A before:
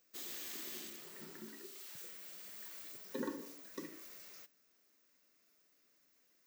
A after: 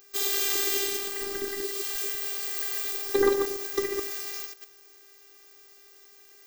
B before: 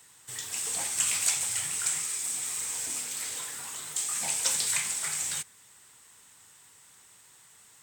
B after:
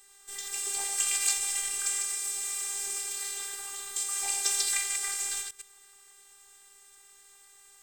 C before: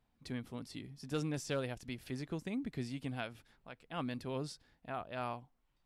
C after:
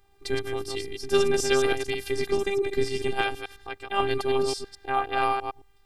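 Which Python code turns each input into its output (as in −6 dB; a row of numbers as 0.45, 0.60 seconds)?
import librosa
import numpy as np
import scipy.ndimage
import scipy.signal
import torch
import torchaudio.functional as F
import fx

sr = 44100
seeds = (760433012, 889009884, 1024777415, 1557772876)

y = fx.reverse_delay(x, sr, ms=108, wet_db=-4.5)
y = fx.robotise(y, sr, hz=396.0)
y = y * 10.0 ** (-6 / 20.0) / np.max(np.abs(y))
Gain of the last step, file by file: +20.0, +0.5, +17.0 decibels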